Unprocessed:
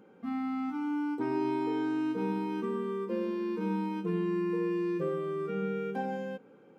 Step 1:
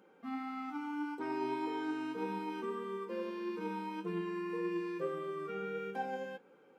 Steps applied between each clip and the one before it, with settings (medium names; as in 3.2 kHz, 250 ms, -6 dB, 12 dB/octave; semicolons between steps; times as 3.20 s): high-pass 610 Hz 6 dB/octave; flange 1.7 Hz, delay 5.2 ms, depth 2.8 ms, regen +68%; trim +3.5 dB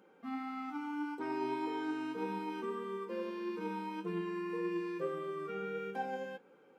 no audible change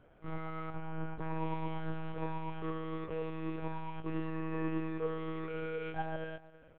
speakerphone echo 330 ms, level -18 dB; monotone LPC vocoder at 8 kHz 160 Hz; trim +1.5 dB